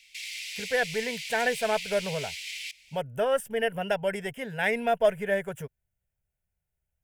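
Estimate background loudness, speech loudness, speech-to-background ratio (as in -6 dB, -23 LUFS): -35.5 LUFS, -28.5 LUFS, 7.0 dB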